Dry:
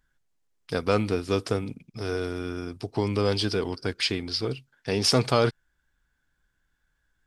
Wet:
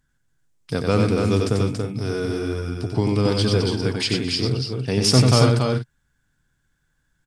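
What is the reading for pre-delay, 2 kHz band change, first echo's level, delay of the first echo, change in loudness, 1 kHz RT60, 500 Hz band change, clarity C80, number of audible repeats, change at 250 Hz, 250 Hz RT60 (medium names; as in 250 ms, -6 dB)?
no reverb, +3.0 dB, -4.0 dB, 92 ms, +6.0 dB, no reverb, +4.0 dB, no reverb, 4, +7.5 dB, no reverb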